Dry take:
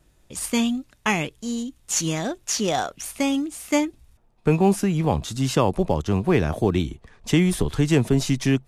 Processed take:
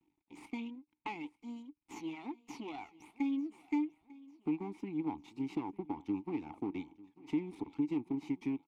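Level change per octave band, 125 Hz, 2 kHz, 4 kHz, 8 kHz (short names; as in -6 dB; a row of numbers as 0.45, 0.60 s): -27.5 dB, -21.0 dB, under -25 dB, under -35 dB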